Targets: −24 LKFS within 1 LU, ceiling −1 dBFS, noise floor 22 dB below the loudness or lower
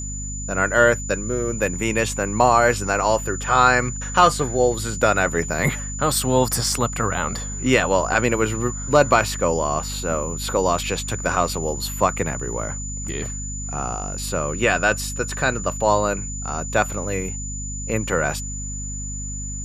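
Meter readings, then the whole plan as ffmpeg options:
mains hum 50 Hz; hum harmonics up to 250 Hz; level of the hum −29 dBFS; interfering tone 7,000 Hz; level of the tone −31 dBFS; integrated loudness −21.5 LKFS; sample peak −1.5 dBFS; target loudness −24.0 LKFS
→ -af "bandreject=frequency=50:width_type=h:width=4,bandreject=frequency=100:width_type=h:width=4,bandreject=frequency=150:width_type=h:width=4,bandreject=frequency=200:width_type=h:width=4,bandreject=frequency=250:width_type=h:width=4"
-af "bandreject=frequency=7000:width=30"
-af "volume=-2.5dB"

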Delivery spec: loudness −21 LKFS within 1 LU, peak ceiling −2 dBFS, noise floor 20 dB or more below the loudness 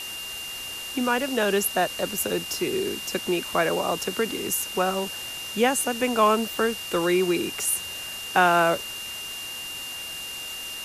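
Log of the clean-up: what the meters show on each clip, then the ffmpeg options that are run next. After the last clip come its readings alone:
interfering tone 2,800 Hz; level of the tone −34 dBFS; background noise floor −35 dBFS; target noise floor −45 dBFS; integrated loudness −25.0 LKFS; sample peak −7.5 dBFS; target loudness −21.0 LKFS
→ -af "bandreject=frequency=2800:width=30"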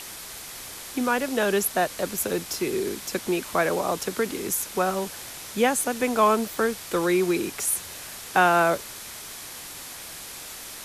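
interfering tone none found; background noise floor −40 dBFS; target noise floor −45 dBFS
→ -af "afftdn=noise_reduction=6:noise_floor=-40"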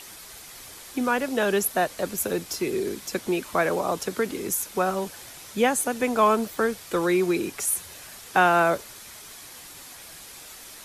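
background noise floor −44 dBFS; target noise floor −45 dBFS
→ -af "afftdn=noise_reduction=6:noise_floor=-44"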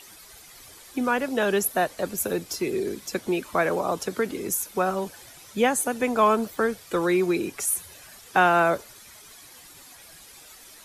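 background noise floor −48 dBFS; integrated loudness −25.0 LKFS; sample peak −8.5 dBFS; target loudness −21.0 LKFS
→ -af "volume=4dB"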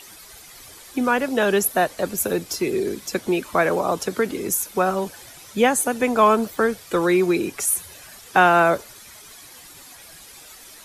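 integrated loudness −21.0 LKFS; sample peak −4.5 dBFS; background noise floor −44 dBFS

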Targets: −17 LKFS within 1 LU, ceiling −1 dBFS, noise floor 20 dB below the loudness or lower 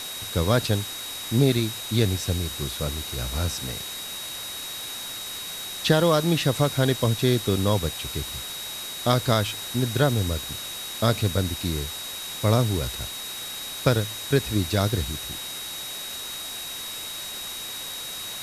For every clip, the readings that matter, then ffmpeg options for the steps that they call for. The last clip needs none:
interfering tone 3,800 Hz; level of the tone −35 dBFS; background noise floor −35 dBFS; target noise floor −46 dBFS; integrated loudness −26.0 LKFS; sample peak −5.0 dBFS; target loudness −17.0 LKFS
→ -af "bandreject=frequency=3800:width=30"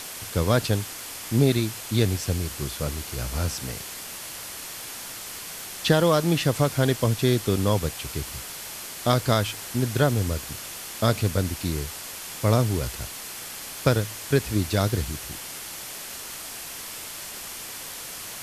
interfering tone none found; background noise floor −38 dBFS; target noise floor −47 dBFS
→ -af "afftdn=noise_reduction=9:noise_floor=-38"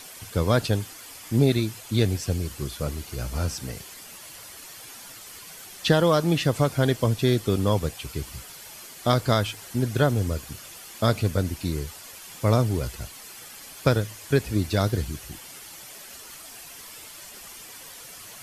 background noise floor −44 dBFS; target noise floor −45 dBFS
→ -af "afftdn=noise_reduction=6:noise_floor=-44"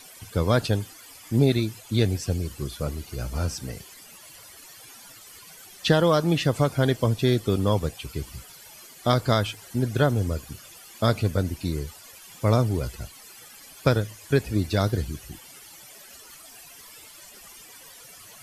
background noise floor −47 dBFS; integrated loudness −25.0 LKFS; sample peak −5.5 dBFS; target loudness −17.0 LKFS
→ -af "volume=8dB,alimiter=limit=-1dB:level=0:latency=1"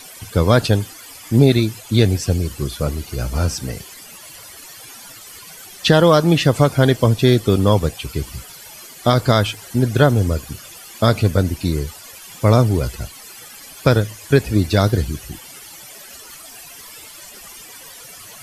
integrated loudness −17.5 LKFS; sample peak −1.0 dBFS; background noise floor −39 dBFS

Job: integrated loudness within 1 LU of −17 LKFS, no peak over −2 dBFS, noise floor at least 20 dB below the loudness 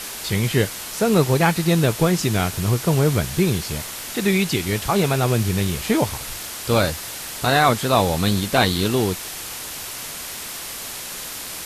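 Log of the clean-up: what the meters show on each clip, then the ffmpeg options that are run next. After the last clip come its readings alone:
background noise floor −33 dBFS; target noise floor −41 dBFS; integrated loudness −21.0 LKFS; sample peak −3.0 dBFS; target loudness −17.0 LKFS
→ -af "afftdn=noise_reduction=8:noise_floor=-33"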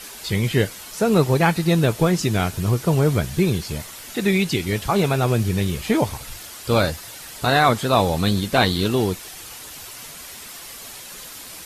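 background noise floor −38 dBFS; target noise floor −41 dBFS
→ -af "afftdn=noise_reduction=6:noise_floor=-38"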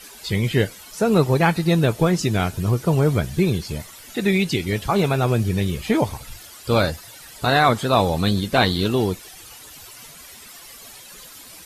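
background noise floor −43 dBFS; integrated loudness −20.5 LKFS; sample peak −3.5 dBFS; target loudness −17.0 LKFS
→ -af "volume=3.5dB,alimiter=limit=-2dB:level=0:latency=1"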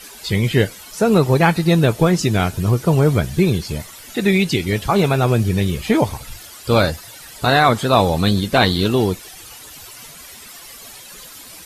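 integrated loudness −17.0 LKFS; sample peak −2.0 dBFS; background noise floor −39 dBFS

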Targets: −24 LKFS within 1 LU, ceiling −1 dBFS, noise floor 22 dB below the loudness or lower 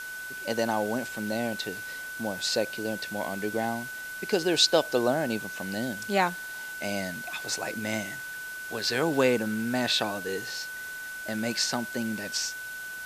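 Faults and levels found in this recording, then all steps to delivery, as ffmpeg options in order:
interfering tone 1,500 Hz; level of the tone −36 dBFS; background noise floor −38 dBFS; target noise floor −51 dBFS; integrated loudness −29.0 LKFS; sample peak −7.5 dBFS; target loudness −24.0 LKFS
→ -af "bandreject=frequency=1500:width=30"
-af "afftdn=noise_reduction=13:noise_floor=-38"
-af "volume=5dB"

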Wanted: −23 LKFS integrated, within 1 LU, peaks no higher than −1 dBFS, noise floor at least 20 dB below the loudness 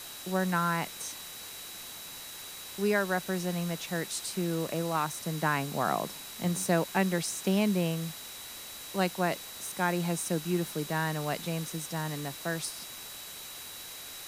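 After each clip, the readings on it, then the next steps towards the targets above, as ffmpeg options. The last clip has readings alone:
interfering tone 3,900 Hz; level of the tone −48 dBFS; background noise floor −44 dBFS; target noise floor −52 dBFS; integrated loudness −32.0 LKFS; sample peak −12.0 dBFS; target loudness −23.0 LKFS
→ -af "bandreject=frequency=3900:width=30"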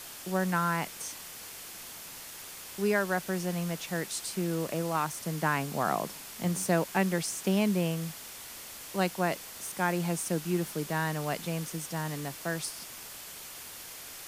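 interfering tone none found; background noise floor −45 dBFS; target noise floor −53 dBFS
→ -af "afftdn=noise_reduction=8:noise_floor=-45"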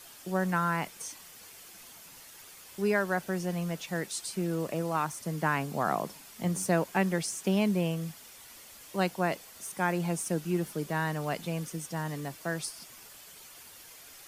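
background noise floor −51 dBFS; target noise floor −52 dBFS
→ -af "afftdn=noise_reduction=6:noise_floor=-51"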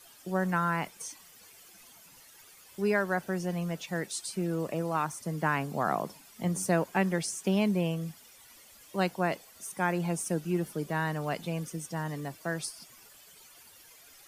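background noise floor −55 dBFS; integrated loudness −31.5 LKFS; sample peak −12.0 dBFS; target loudness −23.0 LKFS
→ -af "volume=8.5dB"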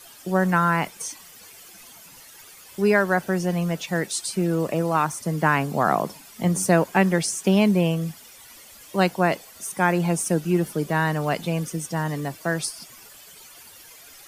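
integrated loudness −23.0 LKFS; sample peak −3.5 dBFS; background noise floor −47 dBFS

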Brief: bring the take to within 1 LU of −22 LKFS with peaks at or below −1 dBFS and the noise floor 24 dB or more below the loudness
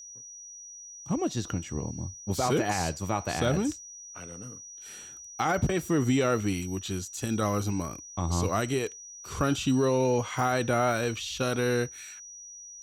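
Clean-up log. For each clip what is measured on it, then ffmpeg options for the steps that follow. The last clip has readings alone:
interfering tone 5,800 Hz; level of the tone −43 dBFS; integrated loudness −28.5 LKFS; sample peak −13.5 dBFS; target loudness −22.0 LKFS
→ -af "bandreject=frequency=5800:width=30"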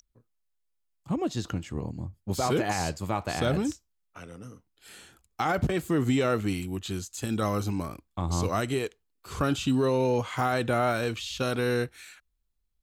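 interfering tone none found; integrated loudness −29.0 LKFS; sample peak −13.5 dBFS; target loudness −22.0 LKFS
→ -af "volume=7dB"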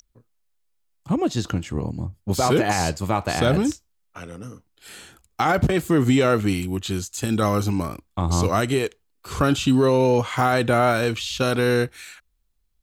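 integrated loudness −22.0 LKFS; sample peak −6.5 dBFS; background noise floor −69 dBFS

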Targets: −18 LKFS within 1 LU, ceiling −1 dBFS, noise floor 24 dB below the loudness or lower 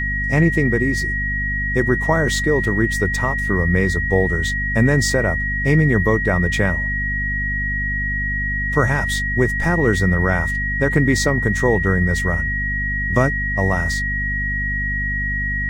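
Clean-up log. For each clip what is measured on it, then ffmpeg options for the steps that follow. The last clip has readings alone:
mains hum 50 Hz; hum harmonics up to 250 Hz; level of the hum −23 dBFS; interfering tone 1,900 Hz; level of the tone −21 dBFS; integrated loudness −18.5 LKFS; sample peak −1.5 dBFS; target loudness −18.0 LKFS
→ -af "bandreject=frequency=50:width_type=h:width=4,bandreject=frequency=100:width_type=h:width=4,bandreject=frequency=150:width_type=h:width=4,bandreject=frequency=200:width_type=h:width=4,bandreject=frequency=250:width_type=h:width=4"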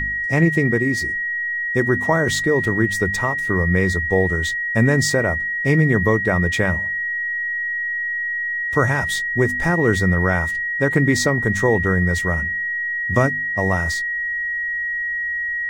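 mains hum none found; interfering tone 1,900 Hz; level of the tone −21 dBFS
→ -af "bandreject=frequency=1900:width=30"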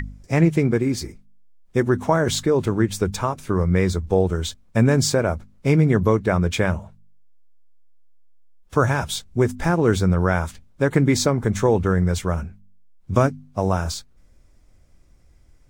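interfering tone none found; integrated loudness −21.0 LKFS; sample peak −2.0 dBFS; target loudness −18.0 LKFS
→ -af "volume=3dB,alimiter=limit=-1dB:level=0:latency=1"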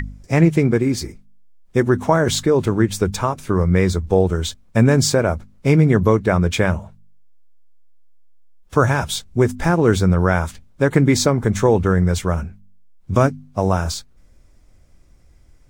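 integrated loudness −18.0 LKFS; sample peak −1.0 dBFS; background noise floor −51 dBFS

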